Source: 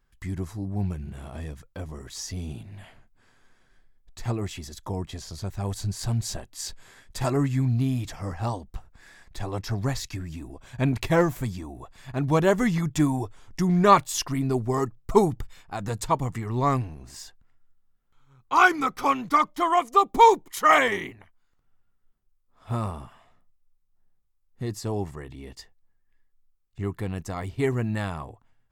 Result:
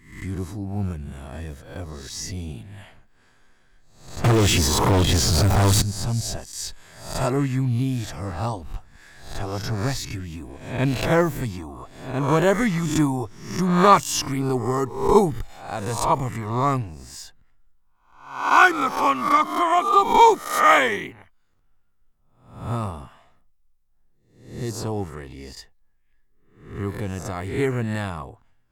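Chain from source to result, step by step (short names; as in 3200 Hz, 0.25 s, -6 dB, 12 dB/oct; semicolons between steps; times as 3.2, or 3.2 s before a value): spectral swells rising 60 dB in 0.60 s; 4.24–5.82 sample leveller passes 5; gain +1 dB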